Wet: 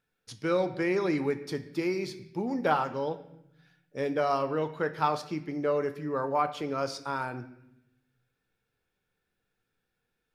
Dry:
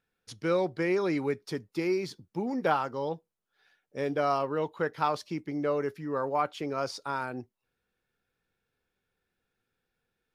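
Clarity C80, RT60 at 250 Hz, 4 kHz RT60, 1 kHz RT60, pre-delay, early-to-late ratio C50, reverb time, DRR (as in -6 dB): 15.0 dB, 1.3 s, 0.75 s, 0.75 s, 7 ms, 13.0 dB, 0.80 s, 9.0 dB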